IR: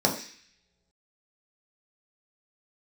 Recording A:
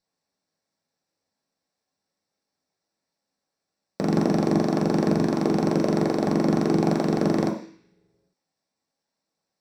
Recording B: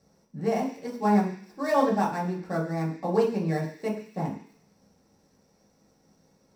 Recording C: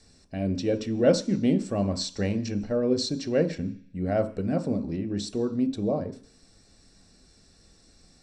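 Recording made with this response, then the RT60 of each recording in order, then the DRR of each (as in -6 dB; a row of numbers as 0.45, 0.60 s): A; not exponential, not exponential, not exponential; -1.0, -5.0, 7.5 dB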